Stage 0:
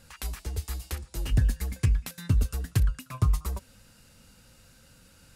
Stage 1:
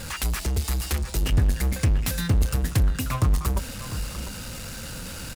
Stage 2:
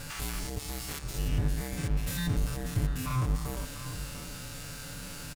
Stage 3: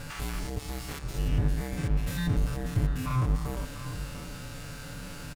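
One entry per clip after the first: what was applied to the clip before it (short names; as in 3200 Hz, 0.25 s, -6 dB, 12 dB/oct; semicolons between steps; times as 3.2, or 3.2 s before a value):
power-law curve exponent 0.5; outdoor echo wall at 120 m, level -11 dB
stepped spectrum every 0.1 s; comb 6.9 ms, depth 84%; gain -6 dB
high shelf 3500 Hz -8.5 dB; gain +2.5 dB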